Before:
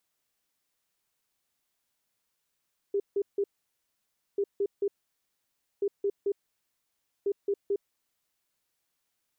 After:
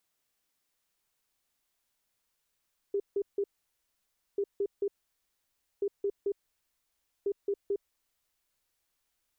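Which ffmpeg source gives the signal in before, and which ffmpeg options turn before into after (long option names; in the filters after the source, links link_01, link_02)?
-f lavfi -i "aevalsrc='0.0631*sin(2*PI*401*t)*clip(min(mod(mod(t,1.44),0.22),0.06-mod(mod(t,1.44),0.22))/0.005,0,1)*lt(mod(t,1.44),0.66)':duration=5.76:sample_rate=44100"
-af "asubboost=boost=3.5:cutoff=71,acompressor=threshold=-28dB:ratio=6"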